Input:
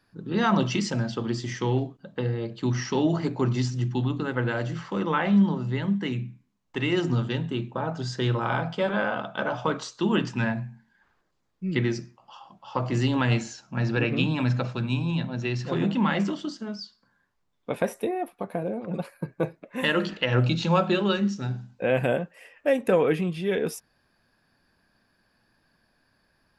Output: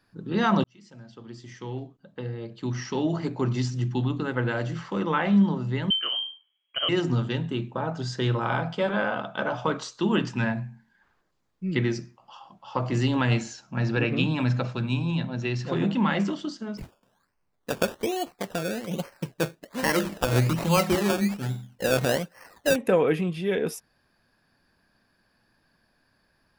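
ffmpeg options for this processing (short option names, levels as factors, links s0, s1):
-filter_complex "[0:a]asettb=1/sr,asplit=3[s0][s1][s2];[s0]atrim=end=5.904[s3];[s1]atrim=start=5.9:end=6.89,asetpts=PTS-STARTPTS,afade=t=in:d=0.004:c=qsin,afade=t=out:st=0.986:d=0.004:c=qsin,lowpass=f=2800:t=q:w=0.5098,lowpass=f=2800:t=q:w=0.6013,lowpass=f=2800:t=q:w=0.9,lowpass=f=2800:t=q:w=2.563,afreqshift=-3300[s4];[s2]atrim=start=6.886[s5];[s3][s4]acrossfade=d=0.004:c1=hsin:c2=qsin[s6];[s6][s5]acrossfade=d=0.004:c1=qsin:c2=hsin,asettb=1/sr,asplit=3[s7][s8][s9];[s7]atrim=end=16.774[s10];[s8]atrim=start=16.77:end=22.76,asetpts=PTS-STARTPTS,afade=t=in:d=0.004:c=qsin,afade=t=out:st=5.986:d=0.004:c=qsin,acrusher=samples=17:mix=1:aa=0.000001:lfo=1:lforange=10.2:lforate=1.2[s11];[s9]atrim=start=22.756[s12];[s10][s11]acrossfade=d=0.004:c1=hsin:c2=qsin[s13];[s13][s12]acrossfade=d=0.004:c1=qsin:c2=hsin,asplit=2[s14][s15];[s14]atrim=end=0.64,asetpts=PTS-STARTPTS,afade=t=out:st=0.636:d=0.004:c=hsin[s16];[s15]atrim=start=0.64,asetpts=PTS-STARTPTS,afade=t=in:d=3.31[s17];[s16][s17]concat=n=2:v=0:a=1"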